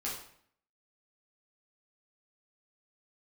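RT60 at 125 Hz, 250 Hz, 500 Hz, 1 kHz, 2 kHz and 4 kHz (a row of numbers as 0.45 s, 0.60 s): 0.70 s, 0.70 s, 0.60 s, 0.60 s, 0.60 s, 0.50 s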